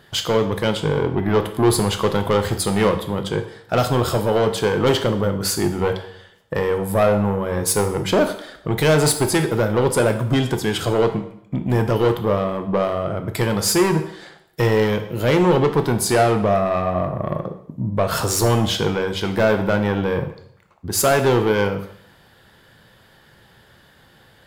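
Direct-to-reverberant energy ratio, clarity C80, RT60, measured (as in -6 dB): 6.5 dB, 13.0 dB, 0.70 s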